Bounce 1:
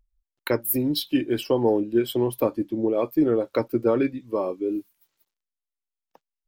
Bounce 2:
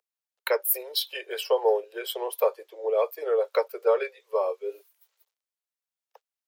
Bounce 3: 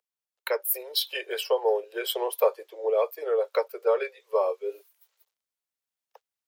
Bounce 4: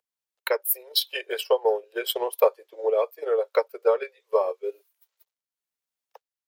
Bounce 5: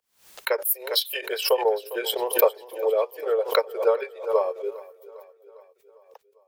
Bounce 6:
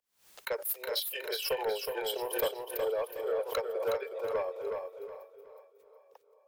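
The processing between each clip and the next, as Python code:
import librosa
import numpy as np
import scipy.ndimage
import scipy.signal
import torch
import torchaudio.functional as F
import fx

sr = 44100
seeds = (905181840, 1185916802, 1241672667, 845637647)

y1 = scipy.signal.sosfilt(scipy.signal.butter(16, 420.0, 'highpass', fs=sr, output='sos'), x)
y1 = y1 * 10.0 ** (1.0 / 20.0)
y2 = fx.rider(y1, sr, range_db=10, speed_s=0.5)
y3 = fx.transient(y2, sr, attack_db=4, sustain_db=-7)
y4 = fx.echo_feedback(y3, sr, ms=403, feedback_pct=57, wet_db=-19)
y4 = fx.pre_swell(y4, sr, db_per_s=130.0)
y5 = 10.0 ** (-16.5 / 20.0) * np.tanh(y4 / 10.0 ** (-16.5 / 20.0))
y5 = fx.echo_feedback(y5, sr, ms=367, feedback_pct=31, wet_db=-5)
y5 = y5 * 10.0 ** (-8.0 / 20.0)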